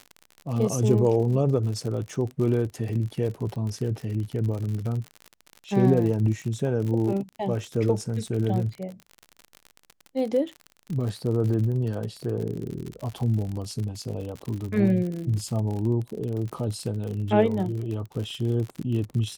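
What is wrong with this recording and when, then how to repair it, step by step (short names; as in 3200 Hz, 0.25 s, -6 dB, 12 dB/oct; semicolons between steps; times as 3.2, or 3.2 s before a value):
crackle 55/s -31 dBFS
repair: de-click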